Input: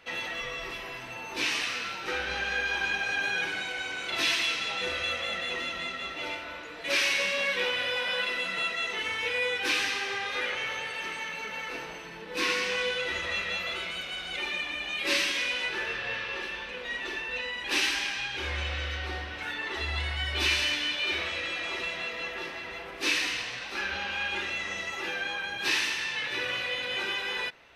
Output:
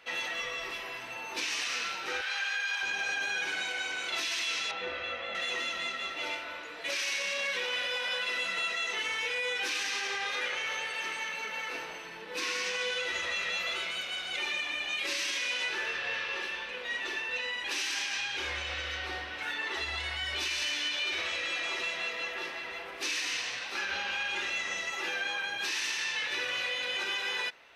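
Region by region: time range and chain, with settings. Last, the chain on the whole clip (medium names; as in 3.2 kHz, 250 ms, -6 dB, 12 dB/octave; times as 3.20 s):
2.21–2.83 s: high-pass 1 kHz + band-stop 6 kHz, Q 13
4.71–5.35 s: low-pass 4.7 kHz + treble shelf 2.7 kHz -12 dB
whole clip: dynamic bell 6.4 kHz, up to +6 dB, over -47 dBFS, Q 1.6; peak limiter -23.5 dBFS; bass shelf 240 Hz -12 dB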